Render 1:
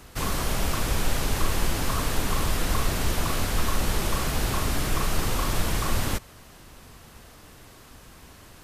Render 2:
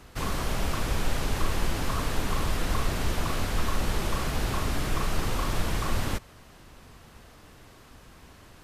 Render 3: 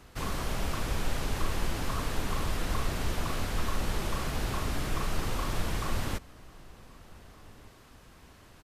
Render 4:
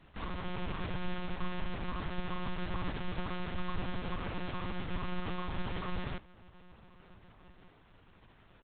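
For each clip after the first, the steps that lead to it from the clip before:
treble shelf 6.4 kHz -7.5 dB; trim -2 dB
echo from a far wall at 260 m, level -22 dB; trim -3.5 dB
monotone LPC vocoder at 8 kHz 180 Hz; trim -6 dB

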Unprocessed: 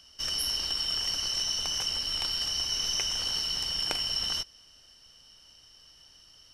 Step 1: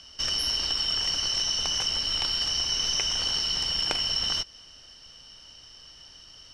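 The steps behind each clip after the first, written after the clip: low-pass 6.8 kHz 12 dB/octave; compression 1.5:1, threshold -37 dBFS, peak gain reduction 4.5 dB; trim +7.5 dB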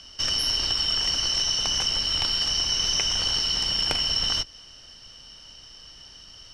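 octave divider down 2 oct, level +1 dB; wavefolder -11.5 dBFS; trim +2.5 dB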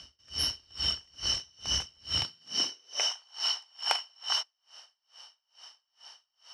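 high-pass sweep 68 Hz -> 840 Hz, 2.01–3.15 s; logarithmic tremolo 2.3 Hz, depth 36 dB; trim -2 dB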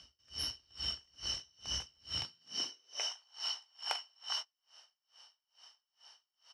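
doubling 17 ms -13.5 dB; trim -8.5 dB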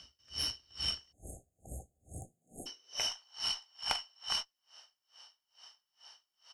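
Chebyshev shaper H 4 -19 dB, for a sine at -19 dBFS; spectral selection erased 1.12–2.67 s, 800–6400 Hz; trim +3 dB

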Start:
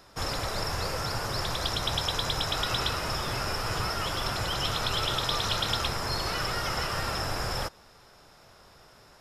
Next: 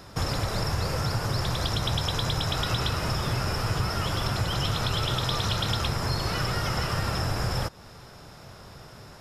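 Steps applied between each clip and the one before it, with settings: peaking EQ 120 Hz +9.5 dB 2.3 oct; compression 2:1, threshold -35 dBFS, peak gain reduction 8 dB; trim +6 dB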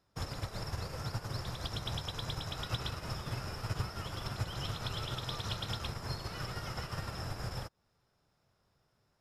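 upward expansion 2.5:1, over -38 dBFS; trim -6.5 dB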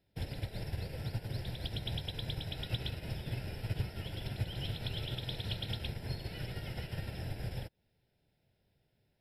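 static phaser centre 2.8 kHz, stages 4; trim +1 dB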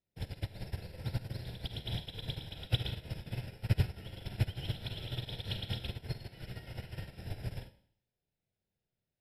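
Schroeder reverb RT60 0.66 s, combs from 33 ms, DRR 2.5 dB; upward expansion 2.5:1, over -44 dBFS; trim +6.5 dB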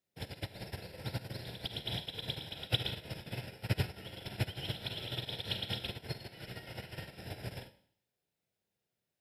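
high-pass 260 Hz 6 dB/octave; trim +4 dB

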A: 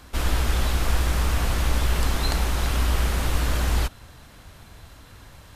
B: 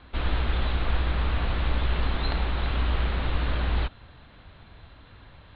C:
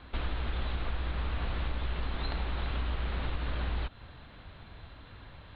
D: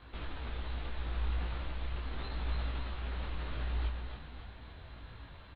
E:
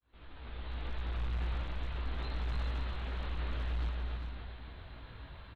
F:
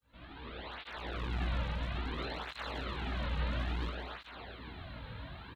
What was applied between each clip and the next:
steep low-pass 4.1 kHz 72 dB/octave; trim -3 dB
compression 4:1, threshold -30 dBFS, peak gain reduction 10 dB
peak limiter -28.5 dBFS, peak gain reduction 6.5 dB; feedback delay 284 ms, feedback 58%, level -5.5 dB; detune thickener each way 27 cents
fade-in on the opening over 0.92 s; overload inside the chain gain 31.5 dB; delay 400 ms -7.5 dB
cancelling through-zero flanger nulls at 0.59 Hz, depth 3 ms; trim +8 dB

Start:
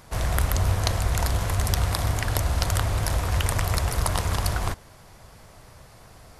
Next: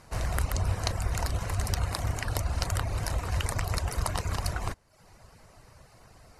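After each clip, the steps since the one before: low-pass 11 kHz 12 dB/octave; reverb removal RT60 0.63 s; band-stop 3.4 kHz, Q 8; trim -4 dB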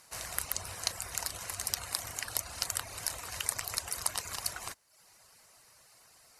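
tilt EQ +4 dB/octave; trim -7.5 dB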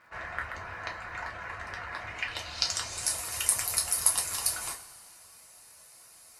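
low-pass sweep 1.7 kHz -> 11 kHz, 1.96–3.19 s; crackle 76 per s -56 dBFS; two-slope reverb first 0.23 s, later 2 s, from -18 dB, DRR -1.5 dB; trim -1 dB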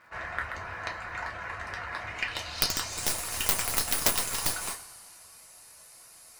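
tracing distortion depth 0.37 ms; trim +2 dB

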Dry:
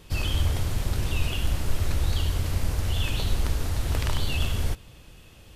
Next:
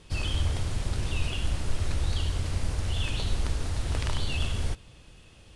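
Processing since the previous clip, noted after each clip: Chebyshev low-pass 9.9 kHz, order 4; trim -2 dB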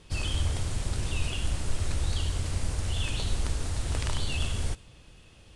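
dynamic bell 8.2 kHz, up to +6 dB, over -57 dBFS, Q 1.3; trim -1 dB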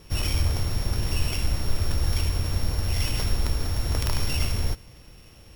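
sorted samples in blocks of 8 samples; trim +4.5 dB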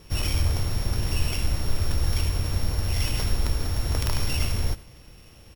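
delay 93 ms -19 dB

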